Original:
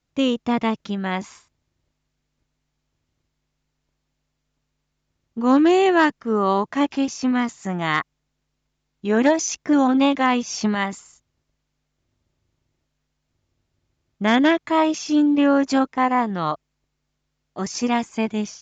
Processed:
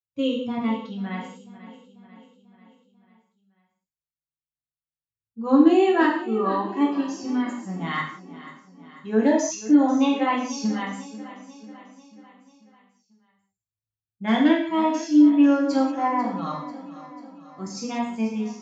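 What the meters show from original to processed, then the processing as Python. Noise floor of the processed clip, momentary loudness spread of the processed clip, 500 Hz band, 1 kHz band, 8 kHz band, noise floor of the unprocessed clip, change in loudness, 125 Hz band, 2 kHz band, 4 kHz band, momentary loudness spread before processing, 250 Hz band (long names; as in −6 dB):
below −85 dBFS, 21 LU, −3.0 dB, −4.0 dB, can't be measured, −77 dBFS, −2.0 dB, −4.0 dB, −6.0 dB, −6.0 dB, 11 LU, −0.5 dB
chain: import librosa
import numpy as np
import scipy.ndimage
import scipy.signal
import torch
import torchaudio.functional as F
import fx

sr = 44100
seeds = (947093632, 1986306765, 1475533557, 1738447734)

p1 = fx.bin_expand(x, sr, power=1.5)
p2 = scipy.signal.sosfilt(scipy.signal.butter(2, 130.0, 'highpass', fs=sr, output='sos'), p1)
p3 = fx.low_shelf(p2, sr, hz=480.0, db=4.5)
p4 = p3 + fx.echo_feedback(p3, sr, ms=492, feedback_pct=56, wet_db=-16.0, dry=0)
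p5 = fx.rev_gated(p4, sr, seeds[0], gate_ms=220, shape='falling', drr_db=-3.0)
y = p5 * 10.0 ** (-8.0 / 20.0)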